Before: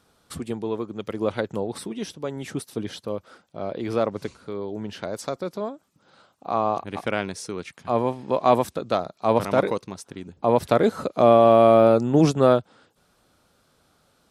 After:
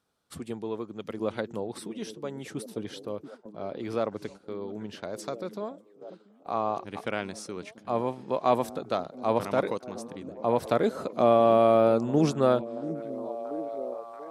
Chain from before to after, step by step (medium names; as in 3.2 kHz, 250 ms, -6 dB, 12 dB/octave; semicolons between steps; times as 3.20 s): bass shelf 64 Hz -8.5 dB; on a send: repeats whose band climbs or falls 684 ms, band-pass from 230 Hz, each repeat 0.7 oct, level -9 dB; on the sum: gate -39 dBFS, range -9 dB; trim -5.5 dB